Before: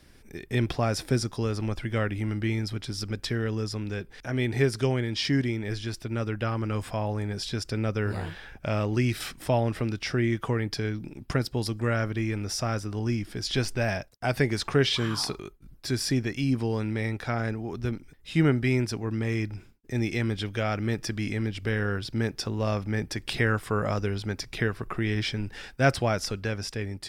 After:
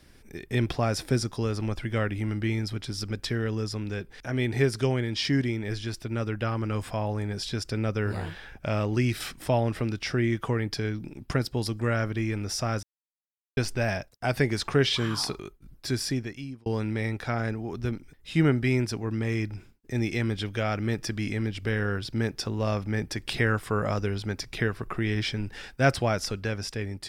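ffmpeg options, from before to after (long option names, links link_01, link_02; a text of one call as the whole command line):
ffmpeg -i in.wav -filter_complex "[0:a]asplit=4[link_01][link_02][link_03][link_04];[link_01]atrim=end=12.83,asetpts=PTS-STARTPTS,afade=type=out:start_time=12.826:duration=0.004:curve=hsin[link_05];[link_02]atrim=start=12.83:end=13.57,asetpts=PTS-STARTPTS,volume=0[link_06];[link_03]atrim=start=13.57:end=16.66,asetpts=PTS-STARTPTS,afade=type=in:duration=0.004:curve=hsin,afade=type=out:start_time=2.35:duration=0.74[link_07];[link_04]atrim=start=16.66,asetpts=PTS-STARTPTS,afade=type=in:duration=0.004:curve=hsin[link_08];[link_05][link_06][link_07][link_08]concat=n=4:v=0:a=1" out.wav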